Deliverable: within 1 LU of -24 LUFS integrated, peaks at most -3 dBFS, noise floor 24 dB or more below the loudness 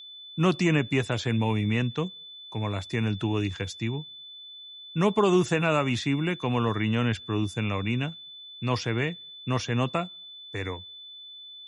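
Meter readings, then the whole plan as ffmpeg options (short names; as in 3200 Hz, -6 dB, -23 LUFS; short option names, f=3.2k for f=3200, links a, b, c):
steady tone 3500 Hz; tone level -42 dBFS; loudness -27.5 LUFS; peak -9.5 dBFS; loudness target -24.0 LUFS
-> -af "bandreject=f=3.5k:w=30"
-af "volume=3.5dB"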